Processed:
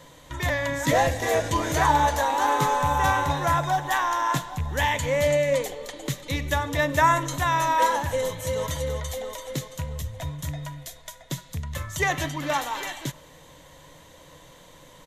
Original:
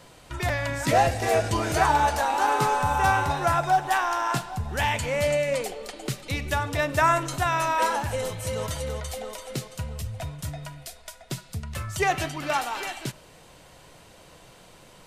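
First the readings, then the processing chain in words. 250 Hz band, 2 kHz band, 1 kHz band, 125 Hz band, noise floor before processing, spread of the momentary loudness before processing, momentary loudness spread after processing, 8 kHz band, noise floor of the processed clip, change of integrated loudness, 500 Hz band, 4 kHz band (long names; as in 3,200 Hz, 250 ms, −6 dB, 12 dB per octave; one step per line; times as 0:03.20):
+2.0 dB, +1.0 dB, +0.5 dB, +1.0 dB, −52 dBFS, 14 LU, 13 LU, +1.5 dB, −50 dBFS, +1.0 dB, +1.0 dB, +1.0 dB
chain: loose part that buzzes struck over −25 dBFS, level −27 dBFS
EQ curve with evenly spaced ripples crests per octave 1.1, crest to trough 8 dB
slap from a distant wall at 75 metres, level −29 dB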